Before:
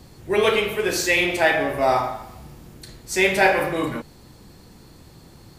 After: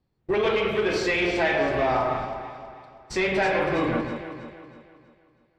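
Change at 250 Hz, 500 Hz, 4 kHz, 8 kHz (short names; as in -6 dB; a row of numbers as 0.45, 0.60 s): -0.5, -2.5, -6.0, -13.5 dB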